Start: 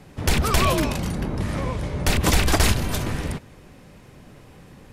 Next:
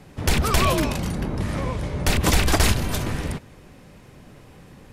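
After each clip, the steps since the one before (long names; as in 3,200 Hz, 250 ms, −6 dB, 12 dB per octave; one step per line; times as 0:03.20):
no processing that can be heard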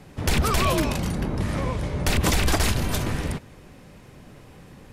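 brickwall limiter −11.5 dBFS, peak gain reduction 4.5 dB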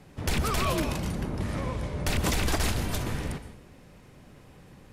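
dense smooth reverb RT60 0.67 s, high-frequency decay 0.8×, pre-delay 105 ms, DRR 11 dB
level −5.5 dB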